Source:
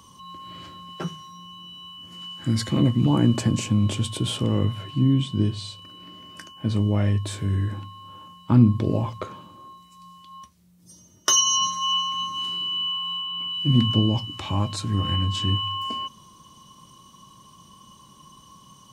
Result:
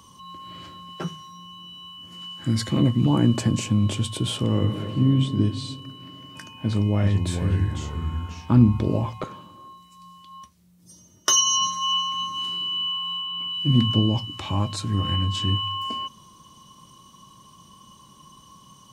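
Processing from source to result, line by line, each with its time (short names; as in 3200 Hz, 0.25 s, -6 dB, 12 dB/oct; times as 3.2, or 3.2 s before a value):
4.46–5.15 reverb throw, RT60 2.6 s, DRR 5 dB
6.08–9.24 echoes that change speed 0.273 s, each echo -3 st, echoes 2, each echo -6 dB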